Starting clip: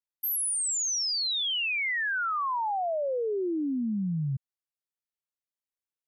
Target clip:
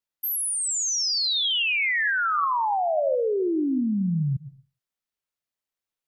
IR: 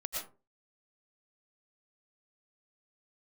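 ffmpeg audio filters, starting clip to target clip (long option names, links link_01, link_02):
-filter_complex "[0:a]asplit=2[link_01][link_02];[1:a]atrim=start_sample=2205,lowpass=6800[link_03];[link_02][link_03]afir=irnorm=-1:irlink=0,volume=-7dB[link_04];[link_01][link_04]amix=inputs=2:normalize=0,volume=2.5dB"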